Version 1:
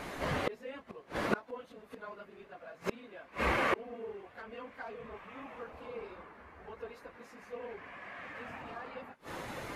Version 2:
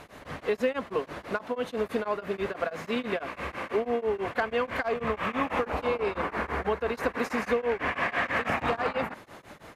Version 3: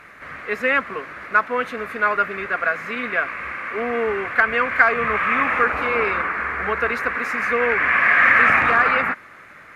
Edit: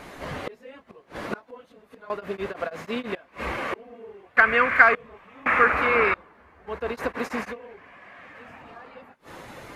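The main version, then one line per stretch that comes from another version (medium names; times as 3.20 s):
1
2.10–3.15 s: from 2
4.37–4.95 s: from 3
5.46–6.14 s: from 3
6.71–7.51 s: from 2, crossfade 0.10 s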